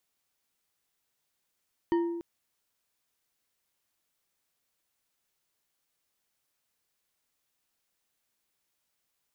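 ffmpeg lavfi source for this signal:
-f lavfi -i "aevalsrc='0.0841*pow(10,-3*t/1.25)*sin(2*PI*340*t)+0.0299*pow(10,-3*t/0.615)*sin(2*PI*937.4*t)+0.0106*pow(10,-3*t/0.384)*sin(2*PI*1837.4*t)+0.00376*pow(10,-3*t/0.27)*sin(2*PI*3037.2*t)+0.00133*pow(10,-3*t/0.204)*sin(2*PI*4535.6*t)':d=0.29:s=44100"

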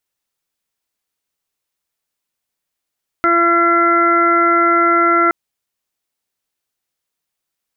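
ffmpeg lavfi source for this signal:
-f lavfi -i "aevalsrc='0.141*sin(2*PI*340*t)+0.0944*sin(2*PI*680*t)+0.0282*sin(2*PI*1020*t)+0.266*sin(2*PI*1360*t)+0.0316*sin(2*PI*1700*t)+0.0891*sin(2*PI*2040*t)':d=2.07:s=44100"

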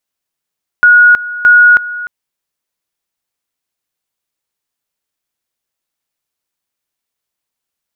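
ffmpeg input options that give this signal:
-f lavfi -i "aevalsrc='pow(10,(-2-16.5*gte(mod(t,0.62),0.32))/20)*sin(2*PI*1450*t)':d=1.24:s=44100"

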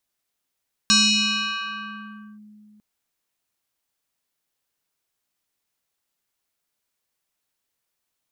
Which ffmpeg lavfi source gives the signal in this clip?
-f lavfi -i "aevalsrc='0.251*pow(10,-3*t/2.96)*sin(2*PI*211*t+4.5*clip(1-t/1.49,0,1)*sin(2*PI*6.44*211*t))':d=1.9:s=44100"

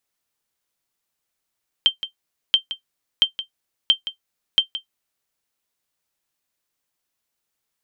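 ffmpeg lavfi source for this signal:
-f lavfi -i "aevalsrc='0.531*(sin(2*PI*3140*mod(t,0.68))*exp(-6.91*mod(t,0.68)/0.11)+0.224*sin(2*PI*3140*max(mod(t,0.68)-0.17,0))*exp(-6.91*max(mod(t,0.68)-0.17,0)/0.11))':d=3.4:s=44100"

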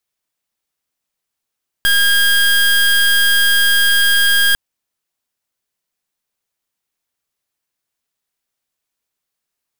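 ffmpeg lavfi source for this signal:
-f lavfi -i "aevalsrc='0.251*(2*lt(mod(1620*t,1),0.26)-1)':d=2.7:s=44100"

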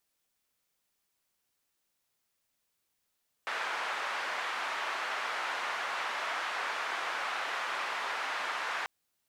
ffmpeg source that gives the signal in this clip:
-f lavfi -i "anoisesrc=c=white:d=5.39:r=44100:seed=1,highpass=f=1000,lowpass=f=1400,volume=-14.5dB"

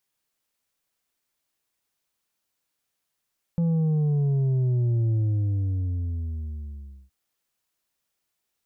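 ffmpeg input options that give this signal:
-f lavfi -i "aevalsrc='0.0944*clip((3.52-t)/1.98,0,1)*tanh(1.78*sin(2*PI*170*3.52/log(65/170)*(exp(log(65/170)*t/3.52)-1)))/tanh(1.78)':d=3.52:s=44100"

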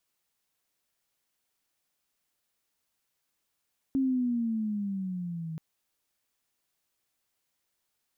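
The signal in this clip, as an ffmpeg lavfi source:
-f lavfi -i "aevalsrc='pow(10,(-23-11*t/1.63)/20)*sin(2*PI*272*1.63/(-9.5*log(2)/12)*(exp(-9.5*log(2)/12*t/1.63)-1))':d=1.63:s=44100"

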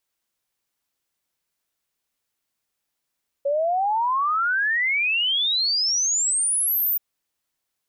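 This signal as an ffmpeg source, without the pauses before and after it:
-f lavfi -i "aevalsrc='0.112*clip(min(t,3.53-t)/0.01,0,1)*sin(2*PI*550*3.53/log(15000/550)*(exp(log(15000/550)*t/3.53)-1))':d=3.53:s=44100"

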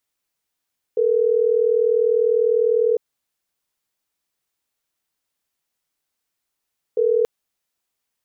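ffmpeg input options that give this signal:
-f lavfi -i "aevalsrc='0.133*(sin(2*PI*440*t)+sin(2*PI*480*t))*clip(min(mod(t,6),2-mod(t,6))/0.005,0,1)':d=6.28:s=44100"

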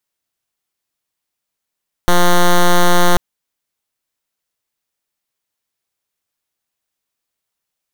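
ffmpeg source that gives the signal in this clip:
-f lavfi -i "aevalsrc='0.376*(2*lt(mod(176*t,1),0.07)-1)':d=1.09:s=44100"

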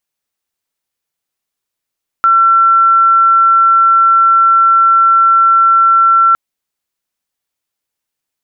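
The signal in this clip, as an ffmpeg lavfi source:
-f lavfi -i "sine=f=1350:d=4.11:r=44100,volume=13.06dB"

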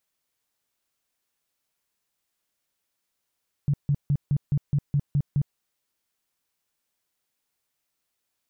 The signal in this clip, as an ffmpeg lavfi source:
-f lavfi -i "aevalsrc='0.119*sin(2*PI*143*mod(t,0.21))*lt(mod(t,0.21),8/143)':d=1.89:s=44100"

